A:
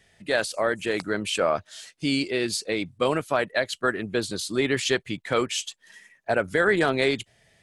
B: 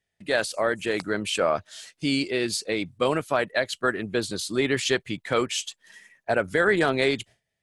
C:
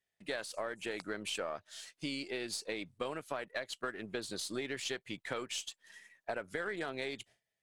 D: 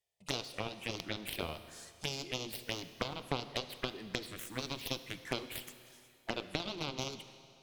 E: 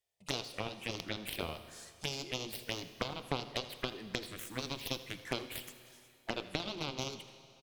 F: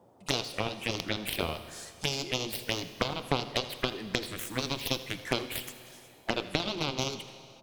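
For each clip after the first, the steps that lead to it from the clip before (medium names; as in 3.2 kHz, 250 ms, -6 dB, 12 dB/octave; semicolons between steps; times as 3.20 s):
gate with hold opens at -47 dBFS
partial rectifier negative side -3 dB; bass shelf 180 Hz -10 dB; compression, threshold -30 dBFS, peak gain reduction 11.5 dB; trim -5 dB
Chebyshev shaper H 3 -24 dB, 7 -15 dB, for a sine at -20 dBFS; touch-sensitive phaser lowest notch 250 Hz, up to 1.8 kHz, full sweep at -43 dBFS; Schroeder reverb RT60 2.4 s, combs from 25 ms, DRR 11.5 dB; trim +9 dB
delay 83 ms -18 dB
band noise 90–850 Hz -68 dBFS; trim +7 dB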